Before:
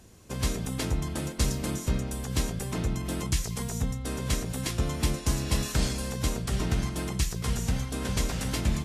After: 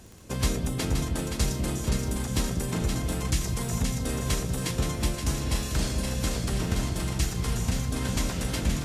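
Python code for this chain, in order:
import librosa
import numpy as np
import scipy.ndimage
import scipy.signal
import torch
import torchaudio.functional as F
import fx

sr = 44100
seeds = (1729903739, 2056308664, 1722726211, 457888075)

y = fx.echo_split(x, sr, split_hz=620.0, low_ms=198, high_ms=523, feedback_pct=52, wet_db=-5.0)
y = fx.rider(y, sr, range_db=5, speed_s=0.5)
y = fx.dmg_crackle(y, sr, seeds[0], per_s=10.0, level_db=-36.0)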